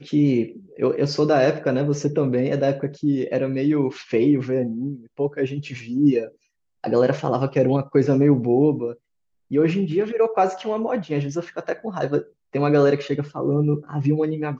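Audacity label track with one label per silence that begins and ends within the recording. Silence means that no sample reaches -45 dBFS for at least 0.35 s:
6.320000	6.840000	silence
8.960000	9.510000	silence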